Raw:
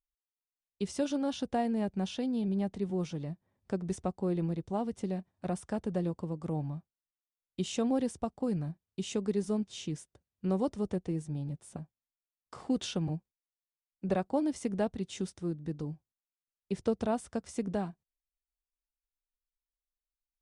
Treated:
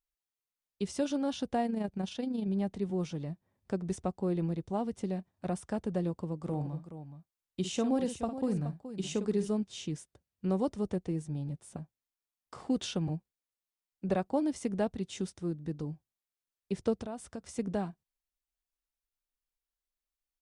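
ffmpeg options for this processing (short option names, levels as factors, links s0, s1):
-filter_complex "[0:a]asettb=1/sr,asplit=3[s0][s1][s2];[s0]atrim=end=1.664[s3];[s1]atrim=start=1.66:end=2.48,asetpts=PTS-STARTPTS,afade=t=in:d=0.004:c=qsin,afade=t=out:st=0.816:d=0.004:c=qsin,tremolo=f=26:d=0.519[s4];[s2]atrim=start=2.476[s5];[s3][s4]acrossfade=d=0.004:c1=hsin:c2=qsin[s6];[s6][s5]acrossfade=d=0.004:c1=qsin:c2=hsin,asplit=3[s7][s8][s9];[s7]afade=t=out:st=6.46:d=0.02[s10];[s8]aecho=1:1:54|423:0.316|0.266,afade=t=in:st=6.46:d=0.02,afade=t=out:st=9.47:d=0.02[s11];[s9]afade=t=in:st=9.47:d=0.02[s12];[s10][s11][s12]amix=inputs=3:normalize=0,asettb=1/sr,asplit=3[s13][s14][s15];[s13]atrim=end=17.004[s16];[s14]atrim=start=17:end=17.59,asetpts=PTS-STARTPTS,afade=t=in:d=0.004:c=qsin,afade=t=out:st=0.586:d=0.004:c=qsin,acompressor=threshold=0.0158:ratio=5:attack=3.2:release=140:knee=1:detection=peak[s17];[s15]atrim=start=17.586[s18];[s16][s17]acrossfade=d=0.004:c1=hsin:c2=qsin[s19];[s19][s18]acrossfade=d=0.004:c1=qsin:c2=hsin"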